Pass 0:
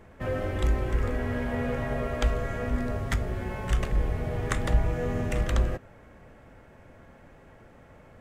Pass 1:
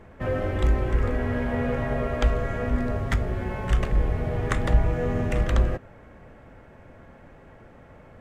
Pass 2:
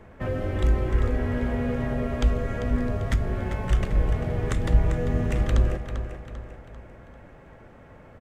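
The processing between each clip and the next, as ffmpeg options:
-af "highshelf=f=4600:g=-8.5,volume=1.5"
-filter_complex "[0:a]aecho=1:1:394|788|1182|1576|1970:0.282|0.124|0.0546|0.024|0.0106,acrossover=split=420|3000[s0][s1][s2];[s1]acompressor=threshold=0.02:ratio=6[s3];[s0][s3][s2]amix=inputs=3:normalize=0"

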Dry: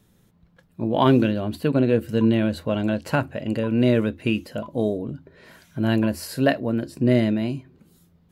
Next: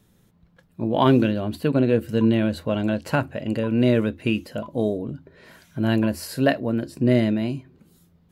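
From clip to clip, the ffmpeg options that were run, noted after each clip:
-af anull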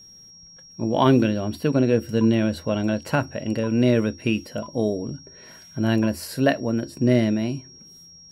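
-af "aeval=exprs='val(0)+0.00562*sin(2*PI*5600*n/s)':c=same"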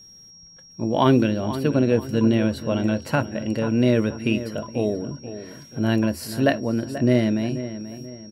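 -filter_complex "[0:a]asplit=2[s0][s1];[s1]adelay=484,lowpass=f=2500:p=1,volume=0.251,asplit=2[s2][s3];[s3]adelay=484,lowpass=f=2500:p=1,volume=0.39,asplit=2[s4][s5];[s5]adelay=484,lowpass=f=2500:p=1,volume=0.39,asplit=2[s6][s7];[s7]adelay=484,lowpass=f=2500:p=1,volume=0.39[s8];[s0][s2][s4][s6][s8]amix=inputs=5:normalize=0"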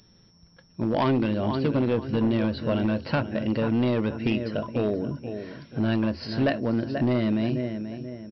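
-af "acompressor=threshold=0.0891:ratio=2.5,aresample=11025,volume=8.41,asoftclip=hard,volume=0.119,aresample=44100,volume=1.12"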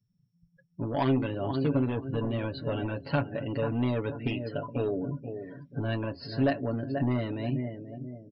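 -af "afftdn=nr=30:nf=-43,aecho=1:1:7.1:0.79,volume=0.501"

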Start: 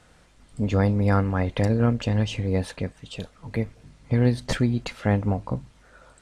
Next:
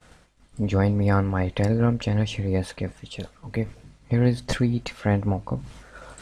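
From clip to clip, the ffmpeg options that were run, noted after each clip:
-af "agate=range=0.0224:threshold=0.00398:ratio=3:detection=peak,areverse,acompressor=mode=upward:threshold=0.0251:ratio=2.5,areverse"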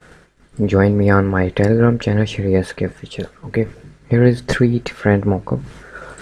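-af "equalizer=f=160:t=o:w=0.67:g=6,equalizer=f=400:t=o:w=0.67:g=11,equalizer=f=1600:t=o:w=0.67:g=9,volume=1.5"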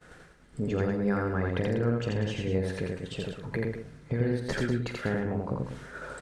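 -filter_complex "[0:a]acompressor=threshold=0.0794:ratio=2.5,asplit=2[s0][s1];[s1]adelay=44,volume=0.251[s2];[s0][s2]amix=inputs=2:normalize=0,asplit=2[s3][s4];[s4]aecho=0:1:84.55|192.4:0.794|0.355[s5];[s3][s5]amix=inputs=2:normalize=0,volume=0.376"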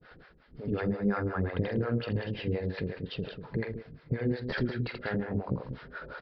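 -filter_complex "[0:a]acrossover=split=480[s0][s1];[s0]aeval=exprs='val(0)*(1-1/2+1/2*cos(2*PI*5.6*n/s))':c=same[s2];[s1]aeval=exprs='val(0)*(1-1/2-1/2*cos(2*PI*5.6*n/s))':c=same[s3];[s2][s3]amix=inputs=2:normalize=0,aresample=11025,aresample=44100,volume=1.33"

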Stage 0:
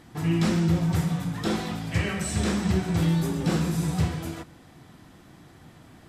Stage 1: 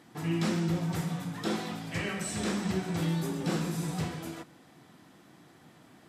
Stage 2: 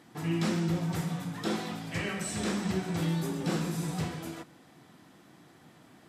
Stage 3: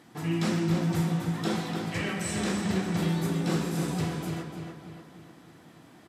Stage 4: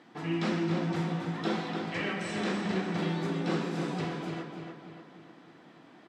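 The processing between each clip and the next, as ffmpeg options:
-af "highpass=170,volume=0.631"
-af anull
-filter_complex "[0:a]asplit=2[s0][s1];[s1]adelay=296,lowpass=f=4400:p=1,volume=0.531,asplit=2[s2][s3];[s3]adelay=296,lowpass=f=4400:p=1,volume=0.51,asplit=2[s4][s5];[s5]adelay=296,lowpass=f=4400:p=1,volume=0.51,asplit=2[s6][s7];[s7]adelay=296,lowpass=f=4400:p=1,volume=0.51,asplit=2[s8][s9];[s9]adelay=296,lowpass=f=4400:p=1,volume=0.51,asplit=2[s10][s11];[s11]adelay=296,lowpass=f=4400:p=1,volume=0.51[s12];[s0][s2][s4][s6][s8][s10][s12]amix=inputs=7:normalize=0,volume=1.19"
-af "highpass=210,lowpass=4000"

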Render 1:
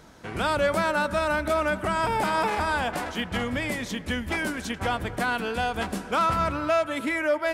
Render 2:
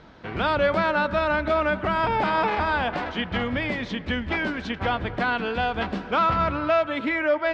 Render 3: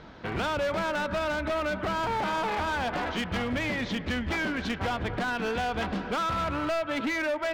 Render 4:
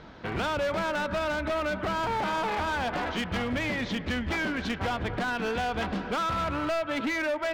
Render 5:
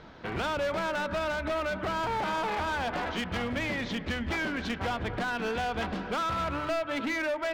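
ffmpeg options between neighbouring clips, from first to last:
-af "lowpass=f=4200:w=0.5412,lowpass=f=4200:w=1.3066,volume=1.26"
-af "acompressor=threshold=0.0501:ratio=3,asoftclip=type=hard:threshold=0.0447,volume=1.19"
-af anull
-af "bandreject=f=50:t=h:w=6,bandreject=f=100:t=h:w=6,bandreject=f=150:t=h:w=6,bandreject=f=200:t=h:w=6,bandreject=f=250:t=h:w=6,bandreject=f=300:t=h:w=6,volume=0.841"

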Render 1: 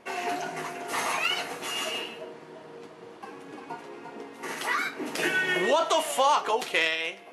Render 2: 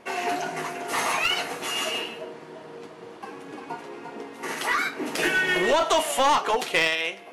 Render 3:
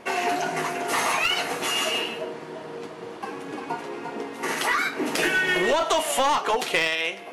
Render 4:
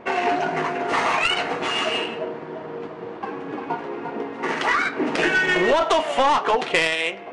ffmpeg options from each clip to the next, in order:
-af "aeval=exprs='clip(val(0),-1,0.0794)':c=same,volume=1.5"
-af "acompressor=threshold=0.0398:ratio=2,volume=1.78"
-af "adynamicsmooth=sensitivity=1:basefreq=2300,volume=1.58" -ar 22050 -c:a libvorbis -b:a 48k

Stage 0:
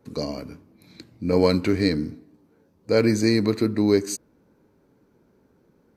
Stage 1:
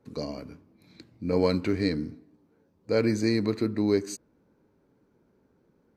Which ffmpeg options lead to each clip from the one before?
-af "highshelf=f=7900:g=-8,volume=0.562"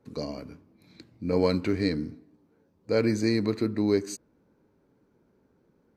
-af anull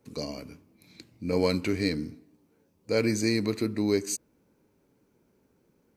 -af "aexciter=amount=1.4:drive=8.1:freq=2200,volume=0.841"

